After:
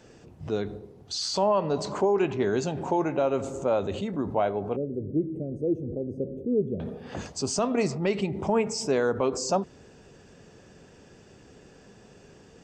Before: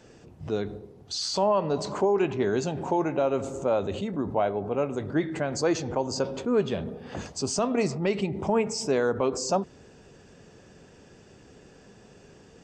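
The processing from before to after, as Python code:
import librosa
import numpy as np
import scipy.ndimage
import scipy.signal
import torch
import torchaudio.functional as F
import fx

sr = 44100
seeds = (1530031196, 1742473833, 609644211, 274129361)

y = fx.cheby2_bandstop(x, sr, low_hz=880.0, high_hz=7800.0, order=4, stop_db=40, at=(4.76, 6.8))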